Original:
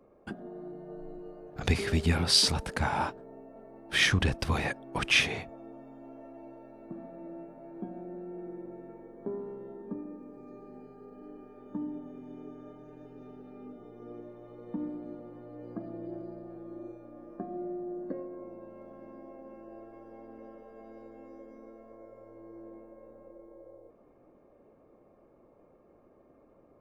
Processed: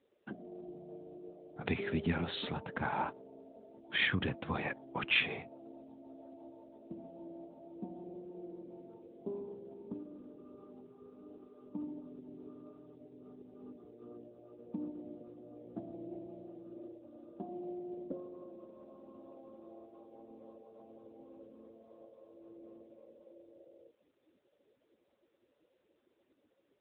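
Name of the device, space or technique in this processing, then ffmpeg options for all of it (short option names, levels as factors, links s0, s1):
mobile call with aggressive noise cancelling: -af "highpass=120,afftdn=nr=20:nf=-48,volume=0.631" -ar 8000 -c:a libopencore_amrnb -b:a 10200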